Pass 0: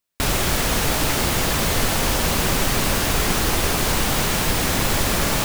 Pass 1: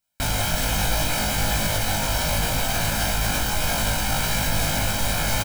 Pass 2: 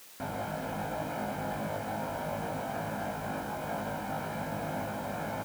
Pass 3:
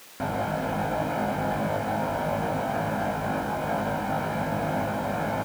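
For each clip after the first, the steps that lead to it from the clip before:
comb 1.3 ms, depth 69%; limiter -13.5 dBFS, peak gain reduction 9 dB; flutter echo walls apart 3.3 m, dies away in 0.29 s; gain -2 dB
Bessel low-pass 840 Hz, order 2; requantised 8-bit, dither triangular; HPF 200 Hz 12 dB/oct; gain -4 dB
high shelf 4700 Hz -6.5 dB; gain +8 dB

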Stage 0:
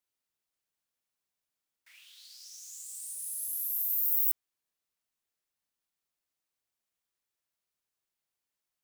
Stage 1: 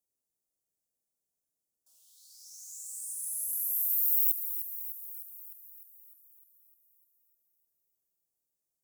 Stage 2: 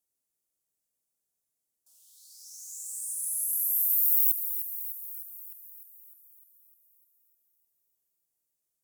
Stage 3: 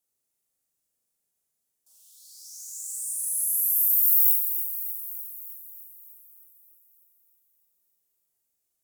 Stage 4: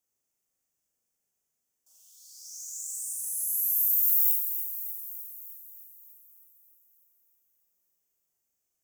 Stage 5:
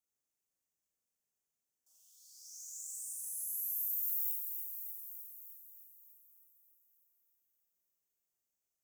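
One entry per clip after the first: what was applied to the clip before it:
Chebyshev band-stop 560–7200 Hz, order 2; thin delay 0.303 s, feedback 62%, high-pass 1800 Hz, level -10 dB; gain +2 dB
bell 11000 Hz +4.5 dB 1.6 oct
flutter echo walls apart 6.8 m, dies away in 0.67 s; gain +1.5 dB
thirty-one-band EQ 4000 Hz -8 dB, 6300 Hz +4 dB, 10000 Hz -7 dB, 16000 Hz -5 dB; hard clip -12 dBFS, distortion -42 dB
compressor 1.5:1, threshold -31 dBFS, peak gain reduction 4.5 dB; gain -8 dB

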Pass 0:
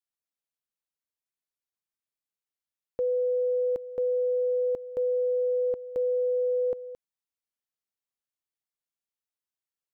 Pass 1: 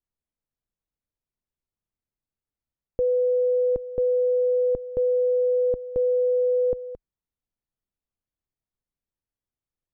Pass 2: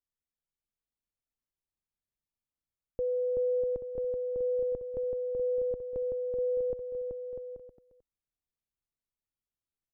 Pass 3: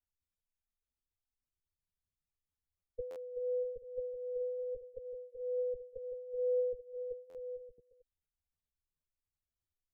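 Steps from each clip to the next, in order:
tilt -4.5 dB/oct
bouncing-ball echo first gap 0.38 s, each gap 0.7×, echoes 5; gain -8.5 dB
spectral contrast raised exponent 2; chorus voices 6, 0.26 Hz, delay 12 ms, depth 1.4 ms; stuck buffer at 3.1/7.29, samples 512, times 4; gain +1 dB

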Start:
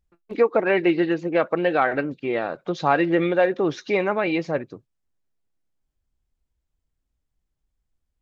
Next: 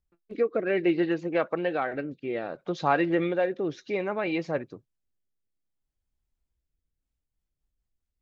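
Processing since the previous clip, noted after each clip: rotary speaker horn 0.6 Hz, later 5 Hz, at 6.66; gain -4 dB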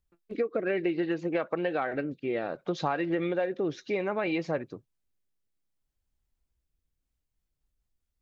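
compressor 10:1, threshold -26 dBFS, peak gain reduction 9.5 dB; gain +1.5 dB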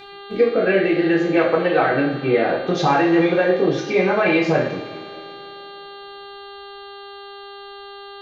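buzz 400 Hz, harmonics 11, -50 dBFS -2 dB/oct; two-slope reverb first 0.55 s, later 2.9 s, from -18 dB, DRR -5 dB; gain +7 dB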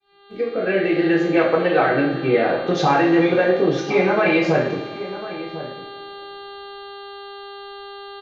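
opening faded in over 1.01 s; outdoor echo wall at 180 m, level -13 dB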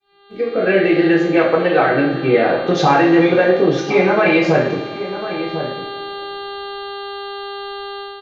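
AGC gain up to 8 dB

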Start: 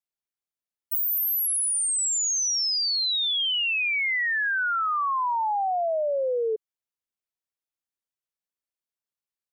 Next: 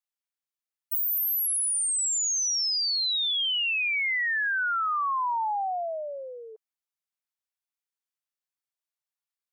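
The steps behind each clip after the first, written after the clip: HPF 720 Hz 24 dB/oct; gain -1.5 dB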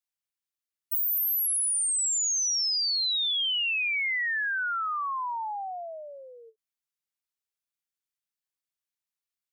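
bell 520 Hz -7.5 dB 2.2 oct; ending taper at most 460 dB/s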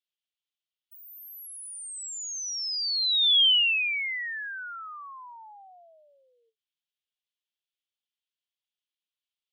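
band-pass 3200 Hz, Q 3.8; gain +8 dB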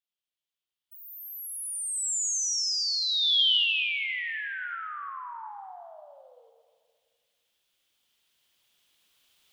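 recorder AGC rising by 5.1 dB/s; reverb RT60 1.9 s, pre-delay 43 ms, DRR 5.5 dB; gain -3.5 dB

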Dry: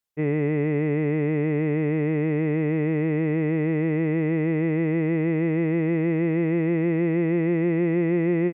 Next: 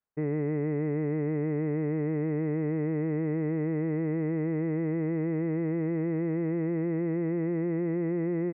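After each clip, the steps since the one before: LPF 1800 Hz 24 dB/oct; limiter -22 dBFS, peak gain reduction 8 dB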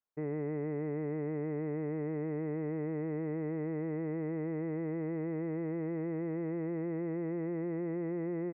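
bell 800 Hz +6 dB 2.2 oct; gain -9 dB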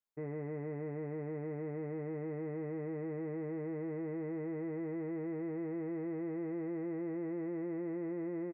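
doubler 15 ms -7.5 dB; gain -4 dB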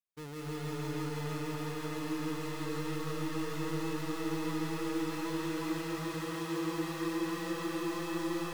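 half-waves squared off; reverb RT60 4.7 s, pre-delay 0.12 s, DRR -6 dB; gain -7.5 dB

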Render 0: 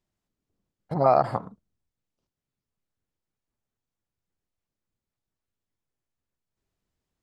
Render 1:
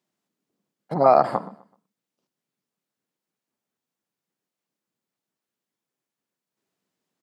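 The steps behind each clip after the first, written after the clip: HPF 170 Hz 24 dB/oct; feedback echo 0.127 s, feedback 33%, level -20 dB; gain +4 dB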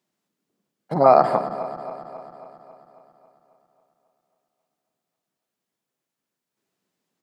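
regenerating reverse delay 0.136 s, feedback 77%, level -13 dB; gain +2 dB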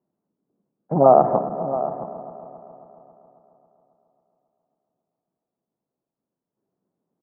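Bessel low-pass 690 Hz, order 4; echo 0.672 s -13 dB; gain +4 dB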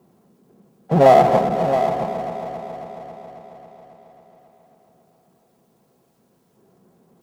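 power-law curve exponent 0.7; notch comb 300 Hz; gain +1 dB

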